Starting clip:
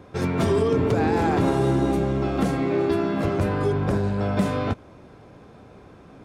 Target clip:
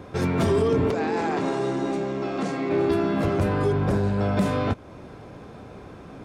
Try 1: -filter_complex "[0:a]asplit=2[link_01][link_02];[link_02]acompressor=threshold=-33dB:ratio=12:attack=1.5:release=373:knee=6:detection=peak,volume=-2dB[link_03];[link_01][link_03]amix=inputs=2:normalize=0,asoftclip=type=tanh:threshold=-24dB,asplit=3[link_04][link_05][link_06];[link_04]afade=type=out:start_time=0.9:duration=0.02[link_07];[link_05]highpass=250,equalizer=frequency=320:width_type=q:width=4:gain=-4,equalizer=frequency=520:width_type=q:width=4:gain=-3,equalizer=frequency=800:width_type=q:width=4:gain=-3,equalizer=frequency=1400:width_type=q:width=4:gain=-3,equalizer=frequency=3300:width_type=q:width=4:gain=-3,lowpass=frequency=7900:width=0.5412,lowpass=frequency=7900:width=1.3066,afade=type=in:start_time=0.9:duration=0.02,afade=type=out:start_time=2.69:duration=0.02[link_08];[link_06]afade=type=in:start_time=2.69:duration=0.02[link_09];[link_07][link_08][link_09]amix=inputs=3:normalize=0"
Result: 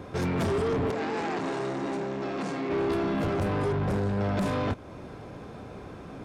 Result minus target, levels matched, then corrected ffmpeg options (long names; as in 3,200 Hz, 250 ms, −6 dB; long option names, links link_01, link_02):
soft clipping: distortion +13 dB
-filter_complex "[0:a]asplit=2[link_01][link_02];[link_02]acompressor=threshold=-33dB:ratio=12:attack=1.5:release=373:knee=6:detection=peak,volume=-2dB[link_03];[link_01][link_03]amix=inputs=2:normalize=0,asoftclip=type=tanh:threshold=-12dB,asplit=3[link_04][link_05][link_06];[link_04]afade=type=out:start_time=0.9:duration=0.02[link_07];[link_05]highpass=250,equalizer=frequency=320:width_type=q:width=4:gain=-4,equalizer=frequency=520:width_type=q:width=4:gain=-3,equalizer=frequency=800:width_type=q:width=4:gain=-3,equalizer=frequency=1400:width_type=q:width=4:gain=-3,equalizer=frequency=3300:width_type=q:width=4:gain=-3,lowpass=frequency=7900:width=0.5412,lowpass=frequency=7900:width=1.3066,afade=type=in:start_time=0.9:duration=0.02,afade=type=out:start_time=2.69:duration=0.02[link_08];[link_06]afade=type=in:start_time=2.69:duration=0.02[link_09];[link_07][link_08][link_09]amix=inputs=3:normalize=0"